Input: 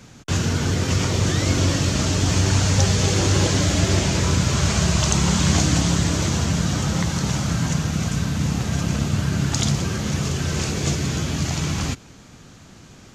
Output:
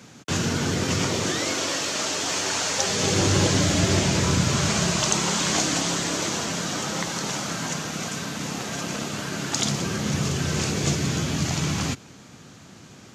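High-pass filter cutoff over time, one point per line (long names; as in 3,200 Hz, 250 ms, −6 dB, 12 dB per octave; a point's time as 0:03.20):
0:01.02 150 Hz
0:01.60 480 Hz
0:02.80 480 Hz
0:03.21 110 Hz
0:04.43 110 Hz
0:05.33 310 Hz
0:09.44 310 Hz
0:10.16 110 Hz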